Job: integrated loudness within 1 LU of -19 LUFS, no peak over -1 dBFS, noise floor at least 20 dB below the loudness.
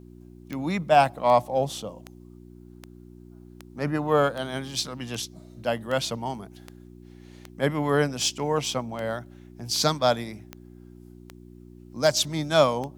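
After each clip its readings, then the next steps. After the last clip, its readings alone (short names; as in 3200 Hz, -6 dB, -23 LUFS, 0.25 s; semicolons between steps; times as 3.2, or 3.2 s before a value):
clicks 17; hum 60 Hz; harmonics up to 360 Hz; hum level -45 dBFS; loudness -25.5 LUFS; peak -5.5 dBFS; loudness target -19.0 LUFS
-> de-click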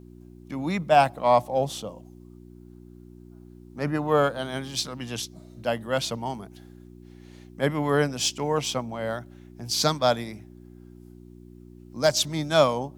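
clicks 0; hum 60 Hz; harmonics up to 360 Hz; hum level -45 dBFS
-> de-hum 60 Hz, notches 6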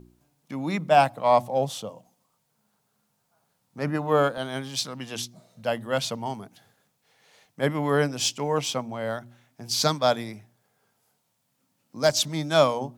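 hum none; loudness -25.5 LUFS; peak -5.5 dBFS; loudness target -19.0 LUFS
-> gain +6.5 dB; limiter -1 dBFS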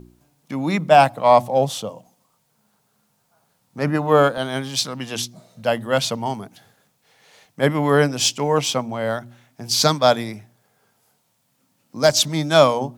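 loudness -19.0 LUFS; peak -1.0 dBFS; noise floor -67 dBFS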